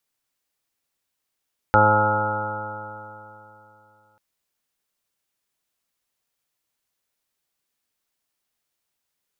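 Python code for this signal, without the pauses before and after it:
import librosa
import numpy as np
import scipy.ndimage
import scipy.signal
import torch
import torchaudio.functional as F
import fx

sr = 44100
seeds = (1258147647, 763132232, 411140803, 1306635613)

y = fx.additive_stiff(sr, length_s=2.44, hz=105.0, level_db=-21.0, upper_db=(-5.5, -7, -9.0, 2.5, -8.0, -10.0, 6.0, -8.5, -13.5, -18, 2, 2.5), decay_s=3.03, stiffness=0.00044)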